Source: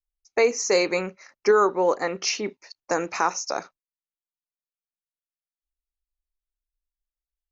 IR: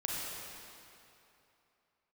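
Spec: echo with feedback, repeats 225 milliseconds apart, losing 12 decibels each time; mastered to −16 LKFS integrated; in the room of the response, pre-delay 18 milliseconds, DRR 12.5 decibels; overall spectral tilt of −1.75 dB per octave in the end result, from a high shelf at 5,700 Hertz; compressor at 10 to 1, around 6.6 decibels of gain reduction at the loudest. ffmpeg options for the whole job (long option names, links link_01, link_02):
-filter_complex "[0:a]highshelf=frequency=5700:gain=5.5,acompressor=threshold=-20dB:ratio=10,aecho=1:1:225|450|675:0.251|0.0628|0.0157,asplit=2[link_01][link_02];[1:a]atrim=start_sample=2205,adelay=18[link_03];[link_02][link_03]afir=irnorm=-1:irlink=0,volume=-17dB[link_04];[link_01][link_04]amix=inputs=2:normalize=0,volume=10.5dB"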